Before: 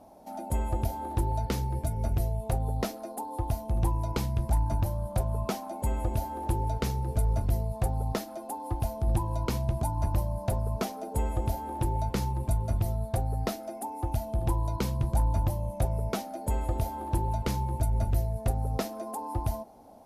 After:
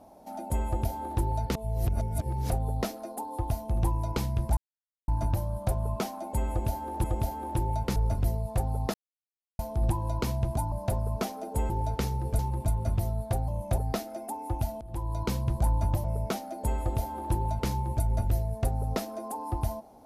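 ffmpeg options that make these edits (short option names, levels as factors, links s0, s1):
-filter_complex "[0:a]asplit=15[s0][s1][s2][s3][s4][s5][s6][s7][s8][s9][s10][s11][s12][s13][s14];[s0]atrim=end=1.552[s15];[s1]atrim=start=1.548:end=2.502,asetpts=PTS-STARTPTS,areverse[s16];[s2]atrim=start=2.498:end=4.57,asetpts=PTS-STARTPTS,afade=t=out:st=2.068:d=0.004:c=hsin,apad=pad_dur=0.51[s17];[s3]atrim=start=4.57:end=6.532,asetpts=PTS-STARTPTS,afade=t=in:d=0.004:c=hsin[s18];[s4]atrim=start=11.298:end=12.222[s19];[s5]atrim=start=7.218:end=8.2,asetpts=PTS-STARTPTS,afade=t=out:st=0.978:d=0.004:c=hsin[s20];[s6]atrim=start=8.2:end=8.85,asetpts=PTS-STARTPTS,volume=0[s21];[s7]atrim=start=8.85:end=9.982,asetpts=PTS-STARTPTS,afade=t=in:d=0.004:c=hsin[s22];[s8]atrim=start=10.318:end=11.302[s23];[s9]atrim=start=6.528:end=7.222[s24];[s10]atrim=start=12.218:end=13.312[s25];[s11]atrim=start=15.568:end=15.872[s26];[s12]atrim=start=13.308:end=14.34,asetpts=PTS-STARTPTS,afade=t=out:st=1.028:d=0.004:c=hsin:silence=0.0841395[s27];[s13]atrim=start=14.34:end=15.572,asetpts=PTS-STARTPTS,afade=t=in:d=0.42:silence=0.0841395[s28];[s14]atrim=start=15.868[s29];[s15][s16]acrossfade=d=0.004:c1=hsin:c2=hsin[s30];[s17][s18]concat=n=2:v=0:a=1[s31];[s30][s31]acrossfade=d=0.004:c1=hsin:c2=hsin[s32];[s32][s19]acrossfade=d=0.004:c1=hsin:c2=hsin[s33];[s20][s21][s22]concat=n=3:v=0:a=1[s34];[s33][s34]acrossfade=d=0.004:c1=hsin:c2=hsin[s35];[s35][s23]acrossfade=d=0.004:c1=hsin:c2=hsin[s36];[s36][s24]acrossfade=d=0.004:c1=hsin:c2=hsin[s37];[s37][s25]acrossfade=d=0.004:c1=hsin:c2=hsin[s38];[s38][s26]acrossfade=d=0.004:c1=hsin:c2=hsin[s39];[s27][s28]concat=n=2:v=0:a=1[s40];[s39][s40]acrossfade=d=0.004:c1=hsin:c2=hsin[s41];[s41][s29]acrossfade=d=0.004:c1=hsin:c2=hsin"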